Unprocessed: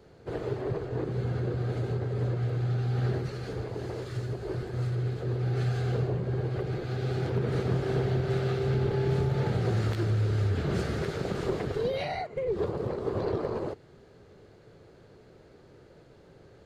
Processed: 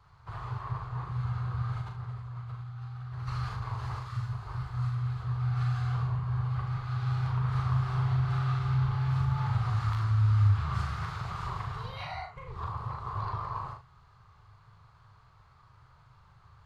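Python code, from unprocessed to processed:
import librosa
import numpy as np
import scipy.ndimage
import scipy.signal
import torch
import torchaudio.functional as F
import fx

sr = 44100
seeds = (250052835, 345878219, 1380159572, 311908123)

y = fx.over_compress(x, sr, threshold_db=-35.0, ratio=-1.0, at=(1.81, 3.99))
y = fx.curve_eq(y, sr, hz=(120.0, 270.0, 530.0, 1100.0, 1600.0, 5000.0, 7100.0), db=(0, -28, -23, 10, -5, -6, -9))
y = fx.room_early_taps(y, sr, ms=(39, 77), db=(-5.0, -10.0))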